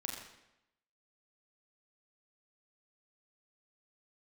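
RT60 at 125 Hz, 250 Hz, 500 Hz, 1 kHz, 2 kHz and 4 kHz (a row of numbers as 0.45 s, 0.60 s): 0.85 s, 0.90 s, 0.90 s, 0.85 s, 0.85 s, 0.75 s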